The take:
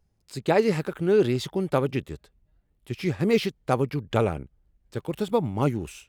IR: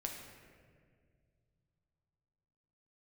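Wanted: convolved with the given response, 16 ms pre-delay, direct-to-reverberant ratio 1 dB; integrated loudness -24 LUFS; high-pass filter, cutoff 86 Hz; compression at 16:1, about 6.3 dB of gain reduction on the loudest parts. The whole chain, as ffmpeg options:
-filter_complex "[0:a]highpass=86,acompressor=threshold=-21dB:ratio=16,asplit=2[a][b];[1:a]atrim=start_sample=2205,adelay=16[c];[b][c]afir=irnorm=-1:irlink=0,volume=-0.5dB[d];[a][d]amix=inputs=2:normalize=0,volume=3dB"

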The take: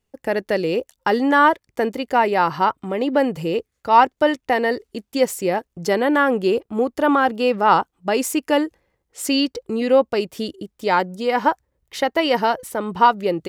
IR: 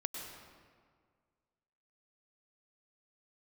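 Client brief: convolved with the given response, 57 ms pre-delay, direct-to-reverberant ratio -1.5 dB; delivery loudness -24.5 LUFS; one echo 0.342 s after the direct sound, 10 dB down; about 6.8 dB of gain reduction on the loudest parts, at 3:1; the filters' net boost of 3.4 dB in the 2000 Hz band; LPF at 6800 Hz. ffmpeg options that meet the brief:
-filter_complex "[0:a]lowpass=6.8k,equalizer=f=2k:t=o:g=4.5,acompressor=threshold=-16dB:ratio=3,aecho=1:1:342:0.316,asplit=2[a][b];[1:a]atrim=start_sample=2205,adelay=57[c];[b][c]afir=irnorm=-1:irlink=0,volume=1dB[d];[a][d]amix=inputs=2:normalize=0,volume=-6.5dB"

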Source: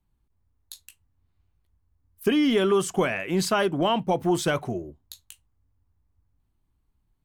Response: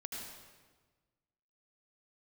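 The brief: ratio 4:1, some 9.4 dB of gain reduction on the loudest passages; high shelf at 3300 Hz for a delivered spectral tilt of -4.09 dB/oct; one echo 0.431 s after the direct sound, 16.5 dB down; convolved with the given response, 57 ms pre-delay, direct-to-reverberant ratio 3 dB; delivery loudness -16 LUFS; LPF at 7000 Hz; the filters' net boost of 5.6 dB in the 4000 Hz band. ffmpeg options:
-filter_complex "[0:a]lowpass=7k,highshelf=f=3.3k:g=6.5,equalizer=f=4k:t=o:g=3.5,acompressor=threshold=-29dB:ratio=4,aecho=1:1:431:0.15,asplit=2[a][b];[1:a]atrim=start_sample=2205,adelay=57[c];[b][c]afir=irnorm=-1:irlink=0,volume=-2dB[d];[a][d]amix=inputs=2:normalize=0,volume=14.5dB"

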